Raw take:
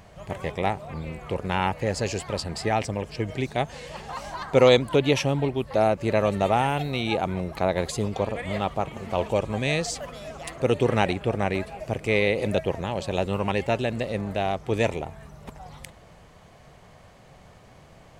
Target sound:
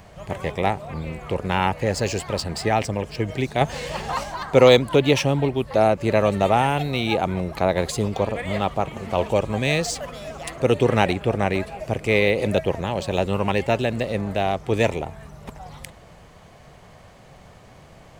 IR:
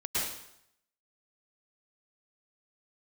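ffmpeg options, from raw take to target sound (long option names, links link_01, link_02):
-filter_complex "[0:a]acrossover=split=560|3800[link_01][link_02][link_03];[link_03]acrusher=bits=3:mode=log:mix=0:aa=0.000001[link_04];[link_01][link_02][link_04]amix=inputs=3:normalize=0,asettb=1/sr,asplit=3[link_05][link_06][link_07];[link_05]atrim=end=3.614[link_08];[link_06]atrim=start=3.61:end=4.24,asetpts=PTS-STARTPTS,afade=type=in:duration=0.004:curve=qsin,afade=type=out:start_time=0.626:duration=0.004:curve=qsin,acontrast=33[link_09];[link_07]atrim=start=4.236[link_10];[link_08][link_09]acrossfade=duration=0.004:curve1=hsin:curve2=qsin[link_11];[link_11][link_10]acrossfade=duration=0.004:curve1=qsin:curve2=hsin,volume=3.5dB"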